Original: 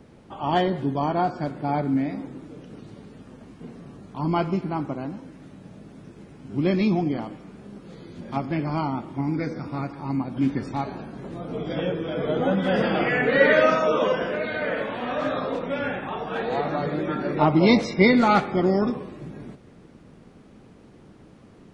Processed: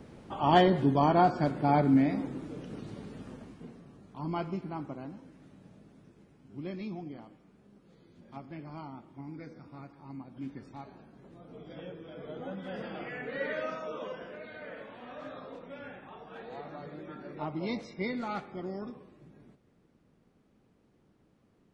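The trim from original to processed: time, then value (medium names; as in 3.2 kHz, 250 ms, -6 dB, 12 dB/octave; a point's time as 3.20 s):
3.30 s 0 dB
3.85 s -10.5 dB
5.63 s -10.5 dB
6.78 s -17.5 dB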